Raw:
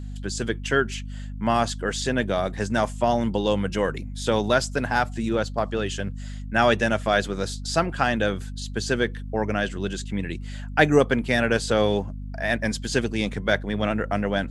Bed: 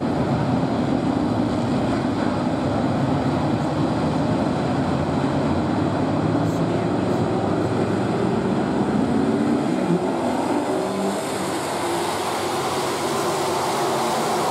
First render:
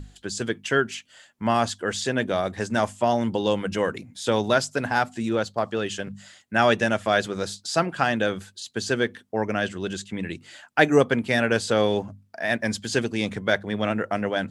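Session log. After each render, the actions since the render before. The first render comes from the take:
mains-hum notches 50/100/150/200/250 Hz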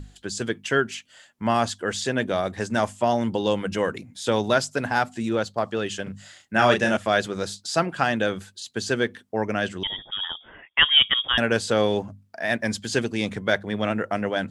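0:06.03–0:06.97: double-tracking delay 32 ms −4.5 dB
0:09.83–0:11.38: voice inversion scrambler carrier 3,500 Hz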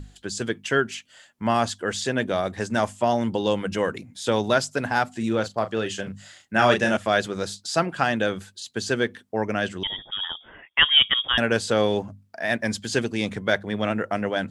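0:05.17–0:06.07: double-tracking delay 36 ms −11 dB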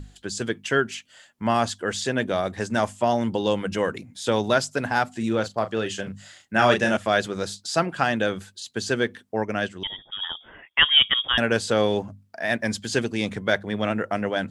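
0:09.40–0:10.22: expander for the loud parts, over −36 dBFS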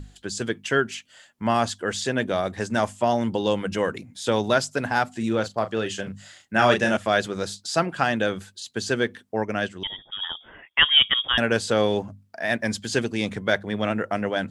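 no processing that can be heard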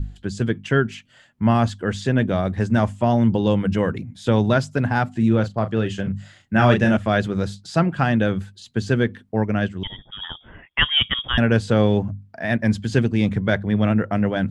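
bass and treble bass +14 dB, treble −9 dB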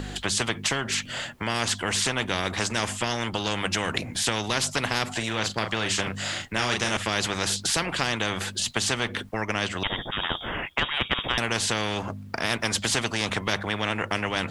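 downward compressor 2 to 1, threshold −23 dBFS, peak gain reduction 7.5 dB
every bin compressed towards the loudest bin 4 to 1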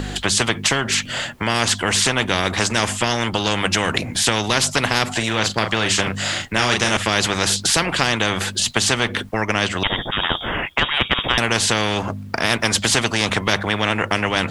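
level +7.5 dB
brickwall limiter −2 dBFS, peak gain reduction 1.5 dB

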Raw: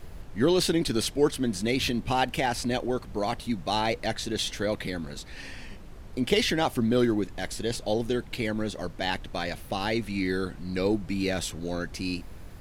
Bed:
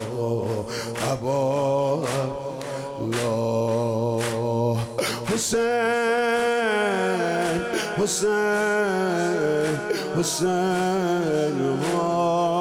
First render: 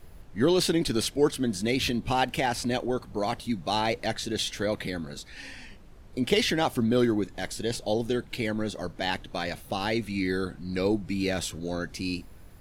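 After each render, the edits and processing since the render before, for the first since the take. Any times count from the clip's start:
noise reduction from a noise print 6 dB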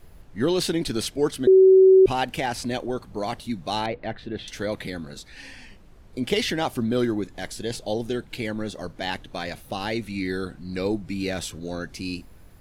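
0:01.47–0:02.06: beep over 379 Hz −9.5 dBFS
0:03.86–0:04.48: high-frequency loss of the air 420 metres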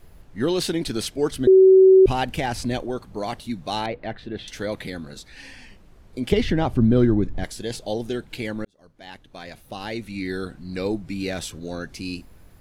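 0:01.31–0:02.83: low-shelf EQ 150 Hz +10 dB
0:06.32–0:07.44: RIAA equalisation playback
0:08.65–0:10.43: fade in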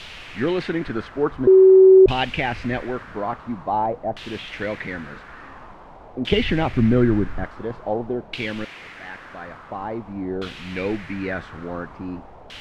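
bit-depth reduction 6 bits, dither triangular
auto-filter low-pass saw down 0.48 Hz 680–3,200 Hz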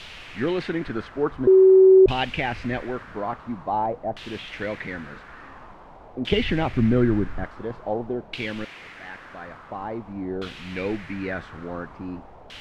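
level −2.5 dB

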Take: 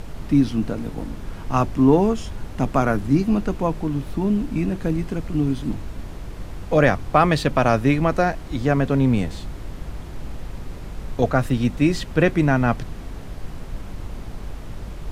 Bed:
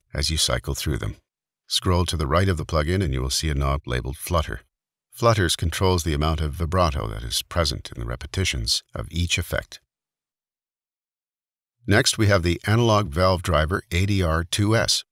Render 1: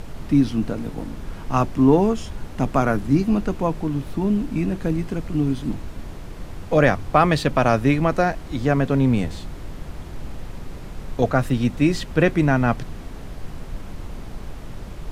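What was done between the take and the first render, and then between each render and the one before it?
hum removal 50 Hz, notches 2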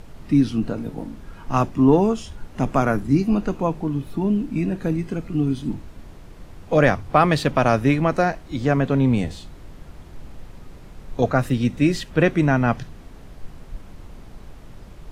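noise reduction from a noise print 7 dB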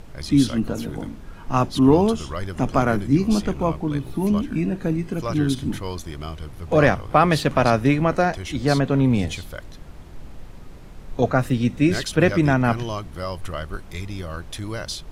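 mix in bed −10.5 dB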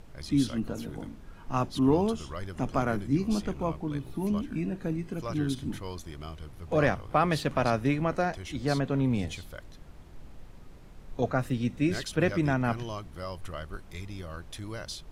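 level −8.5 dB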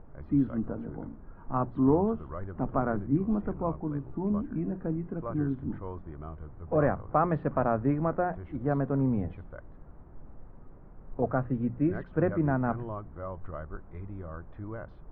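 low-pass filter 1,400 Hz 24 dB per octave
mains-hum notches 60/120/180 Hz

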